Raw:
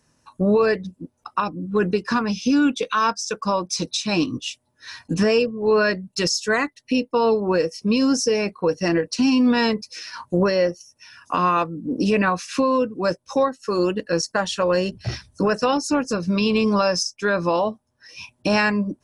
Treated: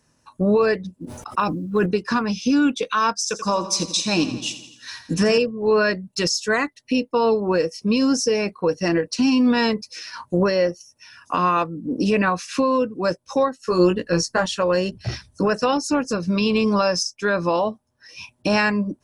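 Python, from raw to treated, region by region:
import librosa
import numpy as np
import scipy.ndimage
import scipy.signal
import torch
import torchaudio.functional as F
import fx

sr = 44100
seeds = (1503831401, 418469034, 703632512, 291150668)

y = fx.chain(x, sr, fx.quant_float(bits=6),
    fx.sustainer(db_per_s=50.0), at=(0.96, 1.86))
y = fx.chain(y, sr, fx.high_shelf(hz=6600.0, db=9.0),
    fx.echo_feedback(ms=84, feedback_pct=58, wet_db=-12.5), at=(3.18, 5.38))
y = fx.chain(y, sr, fx.low_shelf(hz=100.0, db=11.0),
    fx.doubler(ms=17.0, db=-4.0), at=(13.65, 14.46))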